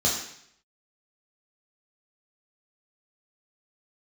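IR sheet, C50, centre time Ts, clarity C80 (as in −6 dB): 4.5 dB, 38 ms, 7.5 dB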